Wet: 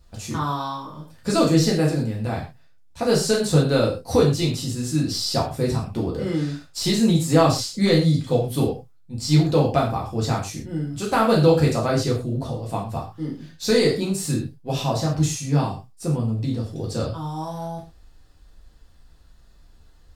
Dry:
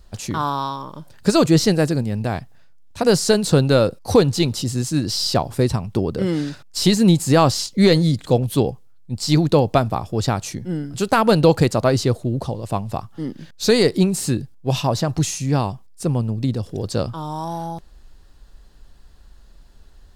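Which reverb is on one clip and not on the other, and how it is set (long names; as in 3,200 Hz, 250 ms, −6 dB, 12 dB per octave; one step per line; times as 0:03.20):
reverb whose tail is shaped and stops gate 150 ms falling, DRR −4 dB
level −8.5 dB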